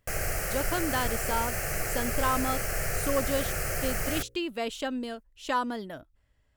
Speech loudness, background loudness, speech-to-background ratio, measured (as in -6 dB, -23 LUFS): -32.5 LUFS, -30.5 LUFS, -2.0 dB